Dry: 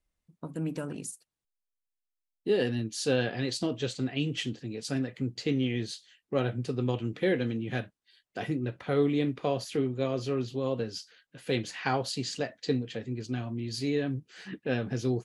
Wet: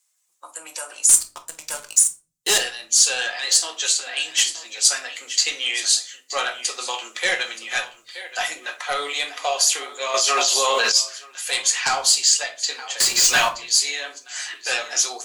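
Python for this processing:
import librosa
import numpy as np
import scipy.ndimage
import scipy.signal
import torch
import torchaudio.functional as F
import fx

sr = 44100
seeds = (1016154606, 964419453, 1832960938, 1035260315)

y = fx.spec_quant(x, sr, step_db=15)
y = scipy.signal.sosfilt(scipy.signal.butter(4, 800.0, 'highpass', fs=sr, output='sos'), y)
y = y + 10.0 ** (-15.5 / 20.0) * np.pad(y, (int(925 * sr / 1000.0), 0))[:len(y)]
y = fx.leveller(y, sr, passes=5, at=(1.09, 2.58))
y = fx.high_shelf(y, sr, hz=9600.0, db=10.5)
y = fx.fold_sine(y, sr, drive_db=7, ceiling_db=-17.5)
y = fx.peak_eq(y, sr, hz=7200.0, db=15.0, octaves=0.98)
y = fx.leveller(y, sr, passes=5, at=(13.0, 13.49))
y = fx.rider(y, sr, range_db=3, speed_s=2.0)
y = fx.room_shoebox(y, sr, seeds[0], volume_m3=210.0, walls='furnished', distance_m=0.92)
y = fx.env_flatten(y, sr, amount_pct=100, at=(10.14, 10.92))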